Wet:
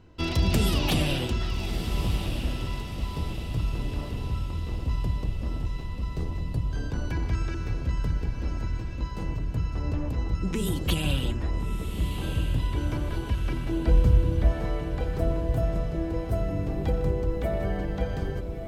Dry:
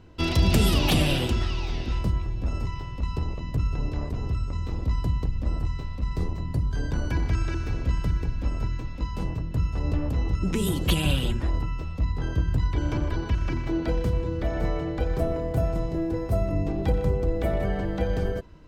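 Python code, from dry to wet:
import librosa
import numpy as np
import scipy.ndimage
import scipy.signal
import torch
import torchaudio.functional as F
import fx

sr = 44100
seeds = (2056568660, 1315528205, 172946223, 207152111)

y = fx.low_shelf(x, sr, hz=150.0, db=11.5, at=(13.83, 14.52))
y = fx.echo_diffused(y, sr, ms=1298, feedback_pct=49, wet_db=-8.0)
y = y * librosa.db_to_amplitude(-3.0)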